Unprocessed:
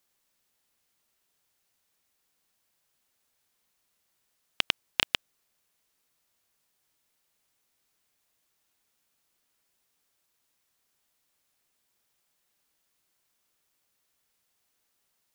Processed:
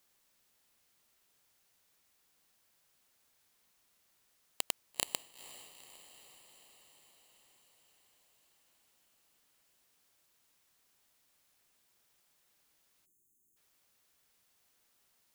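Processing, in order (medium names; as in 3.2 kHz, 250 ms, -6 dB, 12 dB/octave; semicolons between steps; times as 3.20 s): integer overflow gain 17.5 dB; echo that smears into a reverb 464 ms, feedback 66%, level -14.5 dB; spectral selection erased 13.06–13.57 s, 410–6200 Hz; trim +2.5 dB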